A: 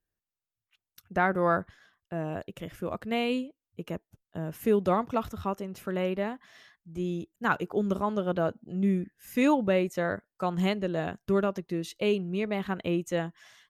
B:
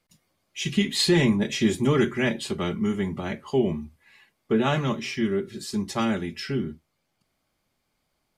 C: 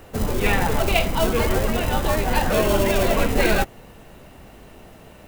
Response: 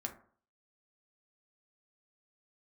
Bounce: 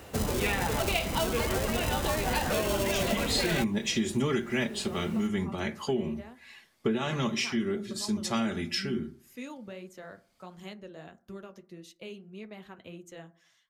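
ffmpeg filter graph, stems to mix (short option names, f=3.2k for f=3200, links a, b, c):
-filter_complex "[0:a]acrossover=split=200|3000[a][b][c];[b]acompressor=threshold=-27dB:ratio=3[d];[a][d][c]amix=inputs=3:normalize=0,flanger=delay=2.3:depth=7.2:regen=-47:speed=1.6:shape=triangular,volume=-14dB,asplit=3[e][f][g];[f]volume=-5dB[h];[1:a]adelay=2350,volume=0dB,asplit=2[i][j];[j]volume=-8.5dB[k];[2:a]highpass=44,volume=-3dB[l];[g]apad=whole_len=472946[m];[i][m]sidechaincompress=threshold=-52dB:ratio=4:attack=8.9:release=468[n];[3:a]atrim=start_sample=2205[o];[h][k]amix=inputs=2:normalize=0[p];[p][o]afir=irnorm=-1:irlink=0[q];[e][n][l][q]amix=inputs=4:normalize=0,equalizer=f=6k:w=0.43:g=5.5,acompressor=threshold=-25dB:ratio=6"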